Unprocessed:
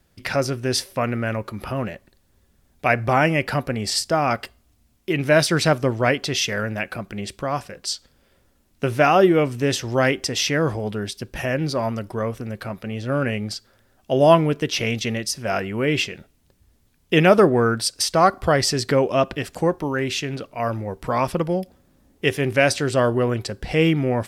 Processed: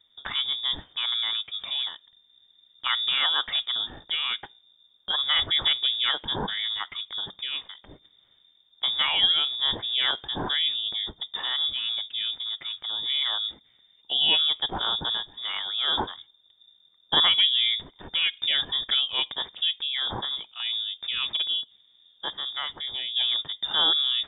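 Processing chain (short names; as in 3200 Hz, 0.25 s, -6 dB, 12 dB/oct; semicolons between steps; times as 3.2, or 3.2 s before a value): bell 820 Hz -13 dB 2.5 oct; 21.61–23.16 compressor 1.5:1, threshold -42 dBFS, peak gain reduction 8 dB; inverted band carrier 3600 Hz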